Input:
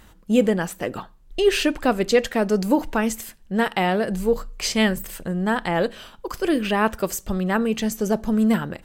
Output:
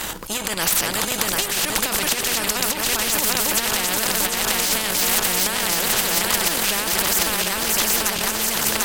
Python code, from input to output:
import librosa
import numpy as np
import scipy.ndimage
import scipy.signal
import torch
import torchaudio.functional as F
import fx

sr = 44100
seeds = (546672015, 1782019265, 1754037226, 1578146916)

p1 = fx.reverse_delay_fb(x, sr, ms=372, feedback_pct=78, wet_db=-5.0)
p2 = fx.transient(p1, sr, attack_db=-2, sustain_db=11)
p3 = fx.high_shelf(p2, sr, hz=2500.0, db=7.5)
p4 = np.clip(p3, -10.0 ** (-15.0 / 20.0), 10.0 ** (-15.0 / 20.0))
p5 = p3 + F.gain(torch.from_numpy(p4), -6.5).numpy()
p6 = fx.peak_eq(p5, sr, hz=910.0, db=6.0, octaves=0.27)
p7 = fx.over_compress(p6, sr, threshold_db=-16.0, ratio=-0.5)
p8 = p7 + fx.echo_single(p7, sr, ms=609, db=-21.5, dry=0)
p9 = fx.spectral_comp(p8, sr, ratio=4.0)
y = F.gain(torch.from_numpy(p9), -1.0).numpy()